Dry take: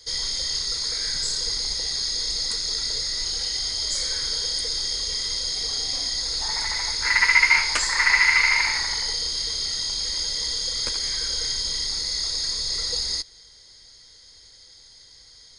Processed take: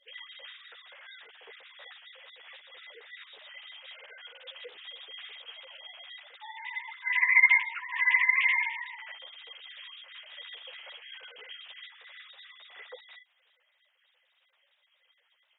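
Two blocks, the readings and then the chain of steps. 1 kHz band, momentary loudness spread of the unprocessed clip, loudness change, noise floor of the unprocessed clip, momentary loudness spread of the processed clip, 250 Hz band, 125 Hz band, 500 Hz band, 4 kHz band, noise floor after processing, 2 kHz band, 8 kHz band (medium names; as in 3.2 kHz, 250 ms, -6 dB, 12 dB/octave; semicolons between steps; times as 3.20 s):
-8.5 dB, 8 LU, -2.5 dB, -50 dBFS, 24 LU, under -30 dB, under -40 dB, under -10 dB, -21.0 dB, -73 dBFS, -5.0 dB, under -40 dB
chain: formants replaced by sine waves; three-phase chorus; trim -5.5 dB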